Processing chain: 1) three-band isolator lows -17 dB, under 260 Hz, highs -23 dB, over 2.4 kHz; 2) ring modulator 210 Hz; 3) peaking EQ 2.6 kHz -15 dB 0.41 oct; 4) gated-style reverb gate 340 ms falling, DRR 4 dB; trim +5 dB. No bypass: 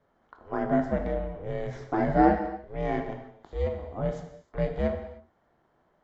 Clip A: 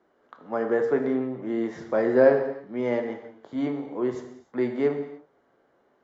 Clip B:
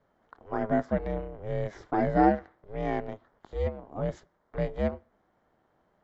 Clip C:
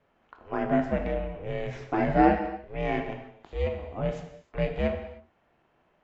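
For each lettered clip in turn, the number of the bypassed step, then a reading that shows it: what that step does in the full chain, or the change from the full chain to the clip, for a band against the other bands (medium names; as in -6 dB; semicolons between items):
2, crest factor change -3.0 dB; 4, momentary loudness spread change +1 LU; 3, 2 kHz band +3.0 dB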